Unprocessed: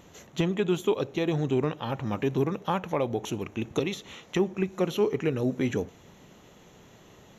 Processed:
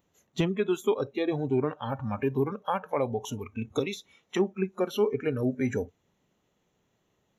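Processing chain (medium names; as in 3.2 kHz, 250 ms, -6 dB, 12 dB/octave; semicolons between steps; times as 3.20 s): spectral noise reduction 20 dB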